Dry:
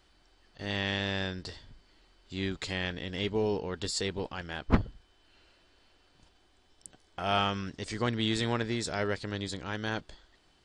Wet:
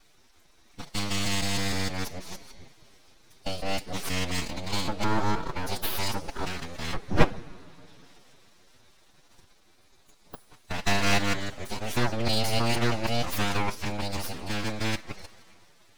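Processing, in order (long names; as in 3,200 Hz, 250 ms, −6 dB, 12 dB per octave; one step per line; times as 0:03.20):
reversed piece by piece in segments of 105 ms
formants moved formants +4 semitones
coupled-rooms reverb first 0.24 s, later 2.6 s, from −18 dB, DRR 12.5 dB
full-wave rectification
phase-vocoder stretch with locked phases 1.5×
level +6.5 dB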